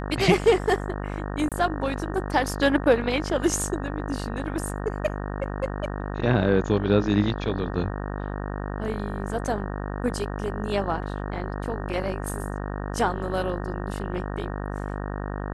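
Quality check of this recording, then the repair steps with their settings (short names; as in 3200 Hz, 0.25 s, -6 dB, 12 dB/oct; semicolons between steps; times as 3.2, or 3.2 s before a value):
buzz 50 Hz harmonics 37 -31 dBFS
1.49–1.52 gap 27 ms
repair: de-hum 50 Hz, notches 37; interpolate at 1.49, 27 ms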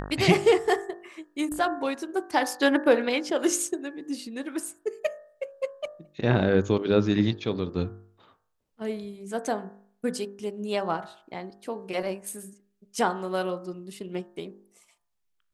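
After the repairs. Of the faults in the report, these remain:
none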